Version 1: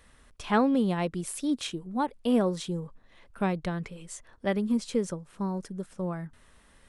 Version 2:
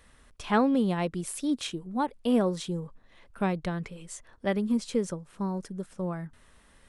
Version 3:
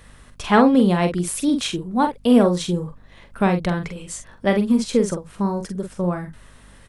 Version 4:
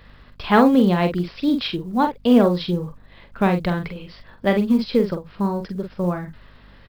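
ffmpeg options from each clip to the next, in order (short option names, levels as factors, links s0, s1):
-af anull
-filter_complex "[0:a]asplit=2[s0][s1];[s1]adelay=45,volume=0.447[s2];[s0][s2]amix=inputs=2:normalize=0,aeval=exprs='val(0)+0.00112*(sin(2*PI*50*n/s)+sin(2*PI*2*50*n/s)/2+sin(2*PI*3*50*n/s)/3+sin(2*PI*4*50*n/s)/4+sin(2*PI*5*50*n/s)/5)':c=same,volume=2.82"
-af "aresample=11025,aresample=44100,acrusher=bits=9:mode=log:mix=0:aa=0.000001"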